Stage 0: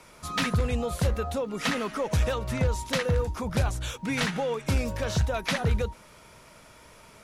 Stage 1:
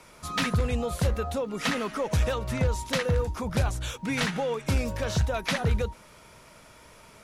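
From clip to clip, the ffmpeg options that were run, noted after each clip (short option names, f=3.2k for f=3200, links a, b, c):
-af anull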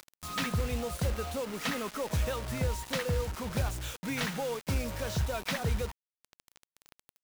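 -af "acompressor=mode=upward:threshold=-38dB:ratio=2.5,acrusher=bits=5:mix=0:aa=0.000001,volume=-5.5dB"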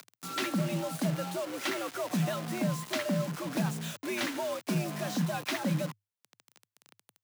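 -af "afreqshift=100"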